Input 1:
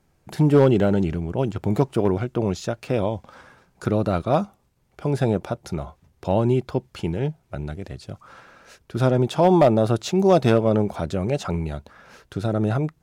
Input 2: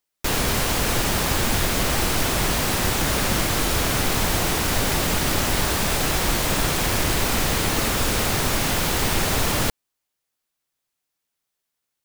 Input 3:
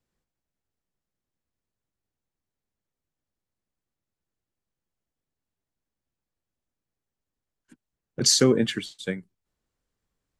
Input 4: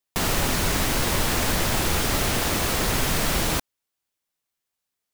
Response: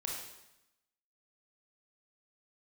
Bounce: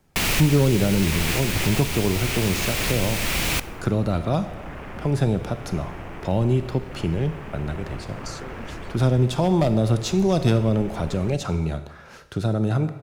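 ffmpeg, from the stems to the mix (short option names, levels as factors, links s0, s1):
-filter_complex "[0:a]volume=1,asplit=3[s0][s1][s2];[s1]volume=0.422[s3];[1:a]afwtdn=0.0501,highshelf=f=5100:g=-11.5,adelay=1650,volume=0.178,asplit=2[s4][s5];[s5]volume=0.473[s6];[2:a]acompressor=threshold=0.1:ratio=6,volume=0.168[s7];[3:a]equalizer=f=2400:w=1.8:g=10,volume=1.06,asplit=2[s8][s9];[s9]volume=0.126[s10];[s2]apad=whole_len=226595[s11];[s8][s11]sidechaincompress=threshold=0.0891:ratio=4:attack=8.2:release=1030[s12];[4:a]atrim=start_sample=2205[s13];[s3][s6][s10]amix=inputs=3:normalize=0[s14];[s14][s13]afir=irnorm=-1:irlink=0[s15];[s0][s4][s7][s12][s15]amix=inputs=5:normalize=0,acrossover=split=220|3000[s16][s17][s18];[s17]acompressor=threshold=0.0355:ratio=2[s19];[s16][s19][s18]amix=inputs=3:normalize=0"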